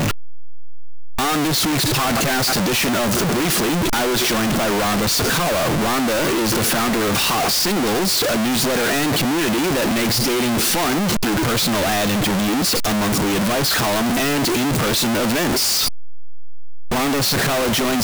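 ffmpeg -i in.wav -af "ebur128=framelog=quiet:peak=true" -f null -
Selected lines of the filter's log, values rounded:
Integrated loudness:
  I:         -17.8 LUFS
  Threshold: -27.8 LUFS
Loudness range:
  LRA:         1.5 LU
  Threshold: -37.9 LUFS
  LRA low:   -18.9 LUFS
  LRA high:  -17.4 LUFS
True peak:
  Peak:      -11.9 dBFS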